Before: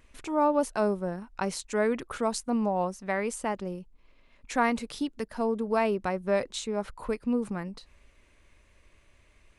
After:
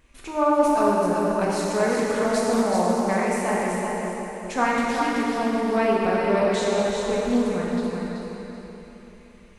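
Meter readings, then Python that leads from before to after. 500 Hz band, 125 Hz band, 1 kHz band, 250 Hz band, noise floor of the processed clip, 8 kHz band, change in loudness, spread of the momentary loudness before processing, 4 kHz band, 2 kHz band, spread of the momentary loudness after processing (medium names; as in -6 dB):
+7.5 dB, +7.0 dB, +7.5 dB, +7.0 dB, -47 dBFS, +6.0 dB, +6.5 dB, 8 LU, +7.0 dB, +7.5 dB, 11 LU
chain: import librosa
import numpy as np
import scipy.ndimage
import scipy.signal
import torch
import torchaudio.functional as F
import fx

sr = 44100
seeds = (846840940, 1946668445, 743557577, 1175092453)

p1 = x + fx.echo_feedback(x, sr, ms=382, feedback_pct=34, wet_db=-5, dry=0)
p2 = fx.rev_plate(p1, sr, seeds[0], rt60_s=3.3, hf_ratio=0.85, predelay_ms=0, drr_db=-5.0)
y = fx.doppler_dist(p2, sr, depth_ms=0.16)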